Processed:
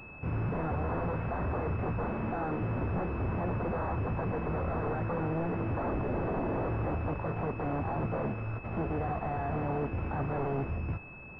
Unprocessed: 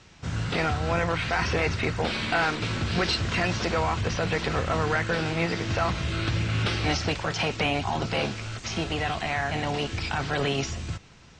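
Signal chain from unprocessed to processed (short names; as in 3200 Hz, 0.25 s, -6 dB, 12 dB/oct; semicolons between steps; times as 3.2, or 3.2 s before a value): delta modulation 32 kbps, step -42 dBFS; 5.8–6.69 low shelf 310 Hz +9.5 dB; wavefolder -26 dBFS; pulse-width modulation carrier 2600 Hz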